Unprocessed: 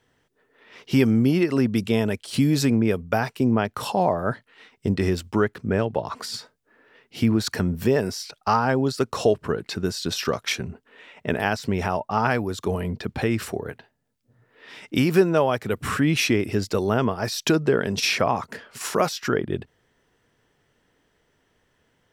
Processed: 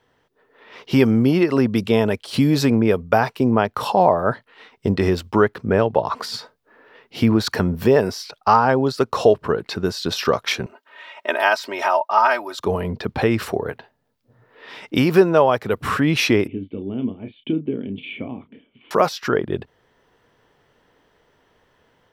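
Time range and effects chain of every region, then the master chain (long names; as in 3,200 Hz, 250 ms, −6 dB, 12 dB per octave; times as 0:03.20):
0:10.66–0:12.60: high-pass filter 670 Hz + comb filter 3.2 ms, depth 87%
0:16.47–0:18.91: formant resonators in series i + double-tracking delay 31 ms −9 dB
whole clip: octave-band graphic EQ 500/1,000/4,000/8,000 Hz +4/+6/+3/−6 dB; automatic gain control gain up to 3.5 dB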